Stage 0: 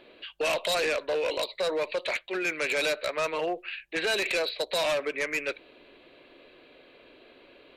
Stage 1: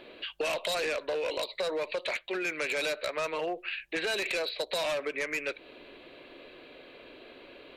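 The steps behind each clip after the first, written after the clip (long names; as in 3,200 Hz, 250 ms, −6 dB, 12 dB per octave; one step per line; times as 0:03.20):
downward compressor 3 to 1, threshold −36 dBFS, peak gain reduction 8.5 dB
level +4 dB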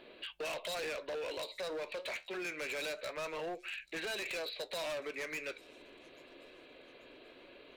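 flanger 0.26 Hz, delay 4.4 ms, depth 9.8 ms, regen −71%
delay with a high-pass on its return 835 ms, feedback 43%, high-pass 4,700 Hz, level −20 dB
hard clipping −35 dBFS, distortion −13 dB
level −1.5 dB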